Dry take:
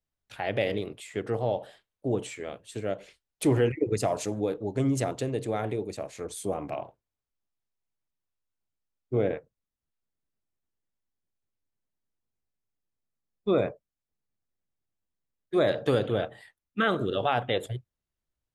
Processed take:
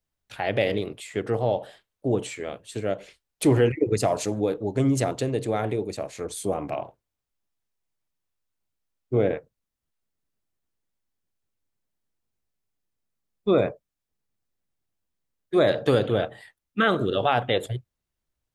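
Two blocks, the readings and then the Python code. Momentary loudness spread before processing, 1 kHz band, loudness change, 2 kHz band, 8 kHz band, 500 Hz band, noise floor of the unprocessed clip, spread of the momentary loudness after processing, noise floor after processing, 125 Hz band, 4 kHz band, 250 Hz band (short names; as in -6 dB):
12 LU, +4.0 dB, +4.0 dB, +4.0 dB, +4.0 dB, +4.0 dB, under -85 dBFS, 12 LU, -85 dBFS, +4.0 dB, +4.5 dB, +4.0 dB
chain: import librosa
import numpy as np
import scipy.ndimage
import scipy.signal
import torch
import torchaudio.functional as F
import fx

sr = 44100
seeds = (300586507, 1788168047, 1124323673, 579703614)

y = fx.dynamic_eq(x, sr, hz=4300.0, q=7.0, threshold_db=-58.0, ratio=4.0, max_db=3)
y = y * librosa.db_to_amplitude(4.0)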